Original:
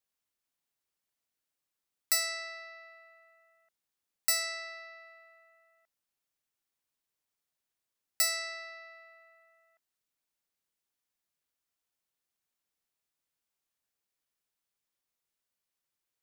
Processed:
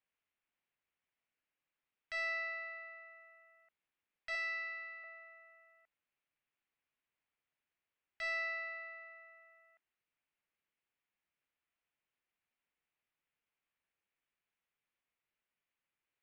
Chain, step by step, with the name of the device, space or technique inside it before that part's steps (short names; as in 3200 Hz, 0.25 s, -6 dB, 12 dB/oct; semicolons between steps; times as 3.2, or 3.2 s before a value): overdriven synthesiser ladder filter (soft clip -30 dBFS, distortion -7 dB; ladder low-pass 3000 Hz, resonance 40%); 4.35–5.04 Bessel high-pass 1100 Hz; gain +7 dB